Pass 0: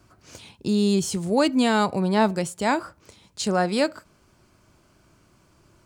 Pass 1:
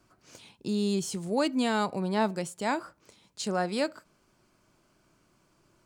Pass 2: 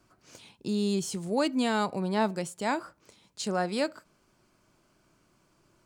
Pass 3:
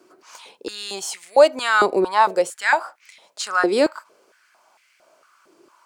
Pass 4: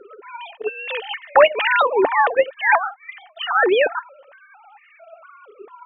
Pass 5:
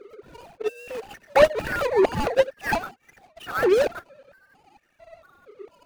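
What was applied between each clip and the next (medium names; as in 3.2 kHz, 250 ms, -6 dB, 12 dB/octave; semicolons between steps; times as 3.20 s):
peaking EQ 76 Hz -13 dB 0.81 oct; trim -6.5 dB
no audible change
step-sequenced high-pass 4.4 Hz 370–2100 Hz; trim +7.5 dB
formants replaced by sine waves; small resonant body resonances 290/1800 Hz, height 9 dB, ringing for 50 ms; spectrum-flattening compressor 2:1; trim -1.5 dB
median filter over 41 samples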